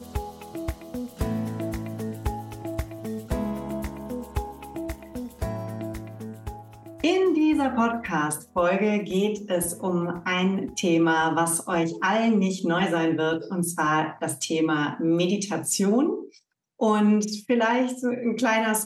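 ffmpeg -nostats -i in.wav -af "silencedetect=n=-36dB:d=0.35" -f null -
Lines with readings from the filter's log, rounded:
silence_start: 16.26
silence_end: 16.80 | silence_duration: 0.54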